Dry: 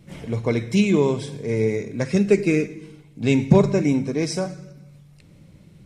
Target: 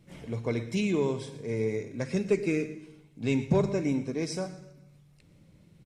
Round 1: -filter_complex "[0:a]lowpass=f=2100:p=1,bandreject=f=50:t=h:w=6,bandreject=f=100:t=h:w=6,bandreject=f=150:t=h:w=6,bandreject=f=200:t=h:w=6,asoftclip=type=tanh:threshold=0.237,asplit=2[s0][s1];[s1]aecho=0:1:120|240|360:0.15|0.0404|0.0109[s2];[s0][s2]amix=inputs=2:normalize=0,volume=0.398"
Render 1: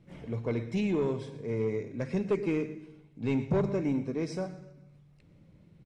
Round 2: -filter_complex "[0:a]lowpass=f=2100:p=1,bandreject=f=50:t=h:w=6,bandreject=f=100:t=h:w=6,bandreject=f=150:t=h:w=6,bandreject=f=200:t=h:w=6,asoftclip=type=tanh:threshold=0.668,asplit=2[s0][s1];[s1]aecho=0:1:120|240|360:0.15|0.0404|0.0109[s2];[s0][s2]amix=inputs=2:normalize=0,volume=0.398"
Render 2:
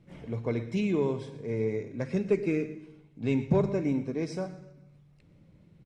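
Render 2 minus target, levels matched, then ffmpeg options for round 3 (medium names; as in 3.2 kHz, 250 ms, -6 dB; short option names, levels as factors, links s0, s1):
2 kHz band -3.0 dB
-filter_complex "[0:a]bandreject=f=50:t=h:w=6,bandreject=f=100:t=h:w=6,bandreject=f=150:t=h:w=6,bandreject=f=200:t=h:w=6,asoftclip=type=tanh:threshold=0.668,asplit=2[s0][s1];[s1]aecho=0:1:120|240|360:0.15|0.0404|0.0109[s2];[s0][s2]amix=inputs=2:normalize=0,volume=0.398"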